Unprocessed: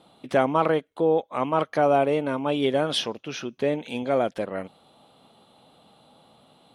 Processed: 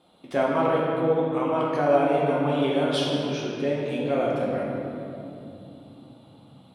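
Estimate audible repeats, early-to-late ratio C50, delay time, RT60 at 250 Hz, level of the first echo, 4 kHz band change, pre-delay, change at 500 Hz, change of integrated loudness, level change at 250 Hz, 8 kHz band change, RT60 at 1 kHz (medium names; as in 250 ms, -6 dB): no echo, -1.0 dB, no echo, 5.1 s, no echo, -1.5 dB, 3 ms, +0.5 dB, 0.0 dB, +2.0 dB, -3.0 dB, 2.4 s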